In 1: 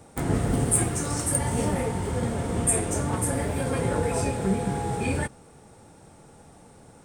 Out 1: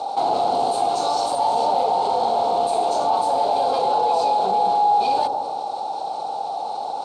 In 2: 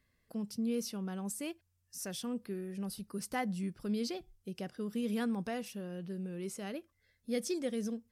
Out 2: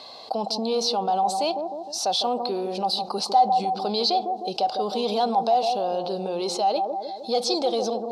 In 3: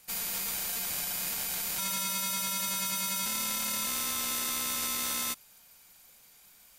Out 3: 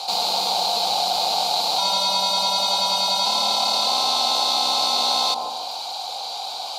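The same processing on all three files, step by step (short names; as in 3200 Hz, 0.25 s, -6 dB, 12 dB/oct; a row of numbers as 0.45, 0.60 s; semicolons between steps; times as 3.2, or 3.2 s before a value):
overdrive pedal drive 27 dB, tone 1600 Hz, clips at -8 dBFS; double band-pass 1800 Hz, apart 2.4 oct; on a send: analogue delay 0.154 s, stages 1024, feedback 36%, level -9 dB; on the sum: fast leveller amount 50%; normalise peaks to -9 dBFS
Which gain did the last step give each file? +5.5, +7.5, +18.0 dB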